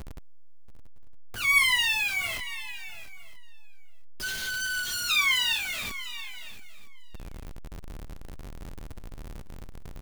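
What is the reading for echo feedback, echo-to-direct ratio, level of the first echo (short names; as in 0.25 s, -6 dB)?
no steady repeat, -13.0 dB, -14.0 dB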